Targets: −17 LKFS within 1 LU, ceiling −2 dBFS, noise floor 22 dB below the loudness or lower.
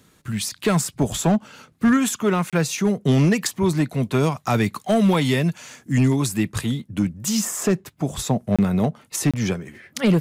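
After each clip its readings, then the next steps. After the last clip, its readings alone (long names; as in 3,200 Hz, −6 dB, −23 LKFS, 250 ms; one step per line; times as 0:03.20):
share of clipped samples 1.0%; peaks flattened at −11.5 dBFS; number of dropouts 3; longest dropout 26 ms; integrated loudness −21.5 LKFS; sample peak −11.5 dBFS; target loudness −17.0 LKFS
→ clipped peaks rebuilt −11.5 dBFS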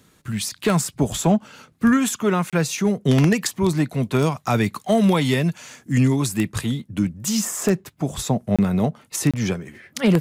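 share of clipped samples 0.0%; number of dropouts 3; longest dropout 26 ms
→ repair the gap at 0:02.50/0:08.56/0:09.31, 26 ms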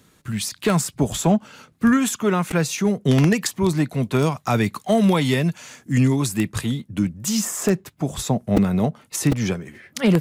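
number of dropouts 0; integrated loudness −21.5 LKFS; sample peak −2.5 dBFS; target loudness −17.0 LKFS
→ level +4.5 dB
brickwall limiter −2 dBFS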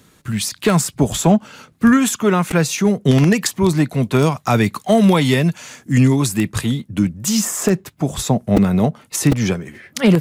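integrated loudness −17.0 LKFS; sample peak −2.0 dBFS; background noise floor −53 dBFS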